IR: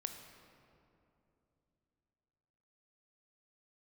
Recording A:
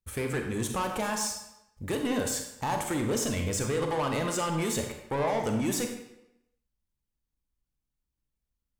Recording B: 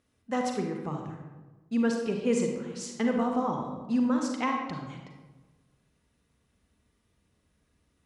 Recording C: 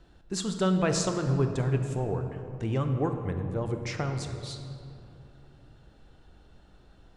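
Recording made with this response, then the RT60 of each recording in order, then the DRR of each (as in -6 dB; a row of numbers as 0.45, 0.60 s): C; 0.90, 1.2, 2.9 s; 3.5, 1.5, 5.5 dB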